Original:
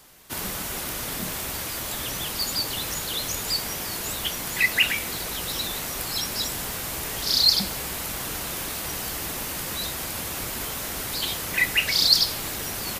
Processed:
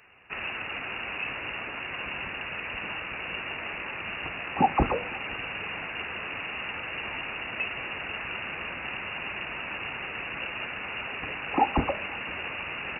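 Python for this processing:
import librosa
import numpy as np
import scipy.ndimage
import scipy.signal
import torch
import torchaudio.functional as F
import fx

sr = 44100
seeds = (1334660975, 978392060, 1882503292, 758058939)

p1 = fx.freq_invert(x, sr, carrier_hz=2800)
p2 = scipy.signal.sosfilt(scipy.signal.butter(2, 48.0, 'highpass', fs=sr, output='sos'), p1)
y = p2 + fx.echo_single(p2, sr, ms=511, db=-24.0, dry=0)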